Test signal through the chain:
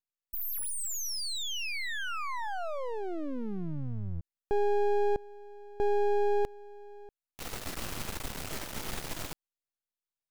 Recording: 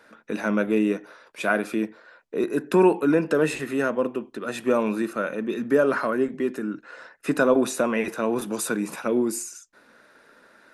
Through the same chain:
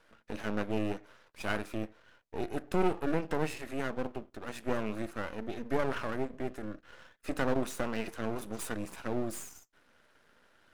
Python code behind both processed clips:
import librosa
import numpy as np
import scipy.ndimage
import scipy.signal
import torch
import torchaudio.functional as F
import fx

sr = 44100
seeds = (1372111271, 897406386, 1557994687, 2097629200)

y = np.maximum(x, 0.0)
y = y * librosa.db_to_amplitude(-7.0)